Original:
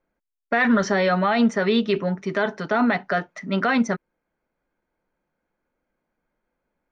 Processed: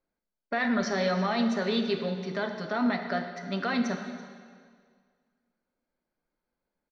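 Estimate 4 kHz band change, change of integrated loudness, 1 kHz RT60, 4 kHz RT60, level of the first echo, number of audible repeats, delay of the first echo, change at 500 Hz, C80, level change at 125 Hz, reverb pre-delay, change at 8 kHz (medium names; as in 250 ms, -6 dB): -3.5 dB, -7.0 dB, 1.9 s, 1.7 s, -20.0 dB, 1, 333 ms, -7.5 dB, 7.5 dB, -6.5 dB, 7 ms, no reading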